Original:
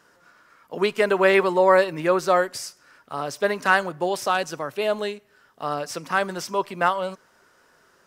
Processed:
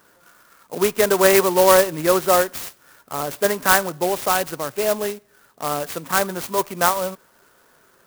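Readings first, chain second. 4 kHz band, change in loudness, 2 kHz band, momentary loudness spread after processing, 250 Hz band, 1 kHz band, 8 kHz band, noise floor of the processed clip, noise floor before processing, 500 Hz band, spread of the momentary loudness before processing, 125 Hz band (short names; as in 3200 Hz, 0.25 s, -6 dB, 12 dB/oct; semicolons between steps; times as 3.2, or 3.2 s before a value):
+5.0 dB, +3.5 dB, +0.5 dB, 15 LU, +3.0 dB, +2.0 dB, +13.0 dB, -57 dBFS, -60 dBFS, +3.0 dB, 15 LU, +3.5 dB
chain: clock jitter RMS 0.075 ms; gain +3 dB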